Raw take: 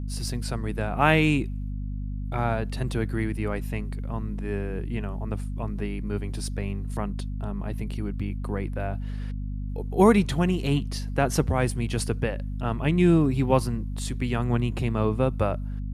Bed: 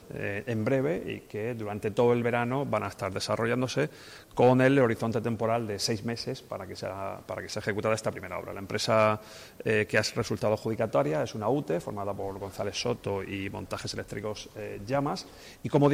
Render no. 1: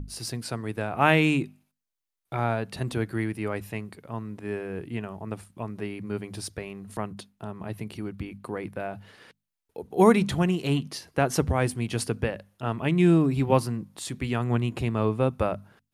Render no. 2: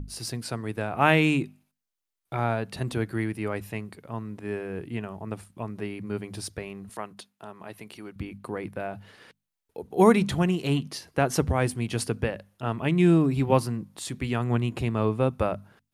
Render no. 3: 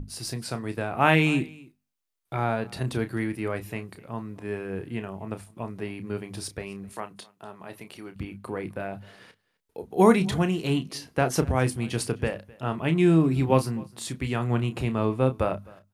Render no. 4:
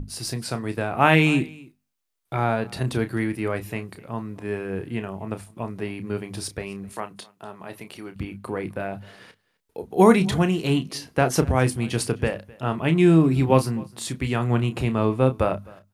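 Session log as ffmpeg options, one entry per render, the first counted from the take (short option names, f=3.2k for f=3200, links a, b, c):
-af "bandreject=f=50:t=h:w=6,bandreject=f=100:t=h:w=6,bandreject=f=150:t=h:w=6,bandreject=f=200:t=h:w=6,bandreject=f=250:t=h:w=6"
-filter_complex "[0:a]asettb=1/sr,asplit=3[a][b][c];[a]atrim=end=6.894[d];[b]atrim=start=6.89:end=8.16,asetpts=PTS-STARTPTS,afade=t=in:d=0.004:c=qsin,afade=t=out:st=1.266:d=0.004:c=qsin,highpass=f=590:p=1[e];[c]atrim=start=8.156[f];[d][e]acrossfade=d=0.004:c1=hsin:c2=qsin[g];[g][f]acrossfade=d=0.004:c1=qsin:c2=hsin"
-filter_complex "[0:a]asplit=2[a][b];[b]adelay=31,volume=-10dB[c];[a][c]amix=inputs=2:normalize=0,aecho=1:1:258:0.0668"
-af "volume=3.5dB,alimiter=limit=-3dB:level=0:latency=1"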